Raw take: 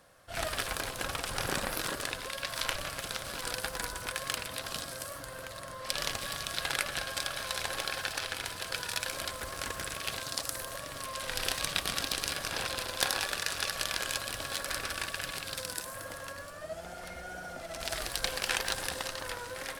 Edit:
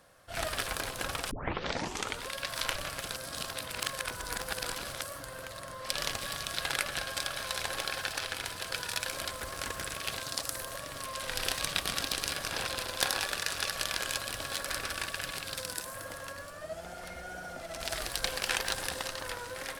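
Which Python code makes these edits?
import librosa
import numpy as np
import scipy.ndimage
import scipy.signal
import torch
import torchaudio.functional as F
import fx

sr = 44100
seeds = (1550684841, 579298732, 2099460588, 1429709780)

y = fx.edit(x, sr, fx.tape_start(start_s=1.31, length_s=0.94),
    fx.reverse_span(start_s=3.16, length_s=1.85), tone=tone)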